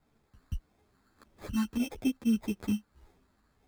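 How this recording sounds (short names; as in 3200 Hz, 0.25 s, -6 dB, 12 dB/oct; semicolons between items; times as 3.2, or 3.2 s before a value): a quantiser's noise floor 12-bit, dither triangular; phasing stages 6, 1.7 Hz, lowest notch 610–1300 Hz; aliases and images of a low sample rate 2900 Hz, jitter 0%; a shimmering, thickened sound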